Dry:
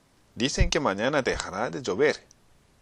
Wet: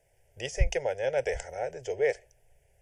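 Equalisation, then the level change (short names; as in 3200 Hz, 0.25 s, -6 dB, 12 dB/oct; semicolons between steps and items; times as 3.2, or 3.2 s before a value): bell 6600 Hz -3.5 dB 1.2 oct; fixed phaser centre 500 Hz, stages 4; fixed phaser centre 1100 Hz, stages 6; 0.0 dB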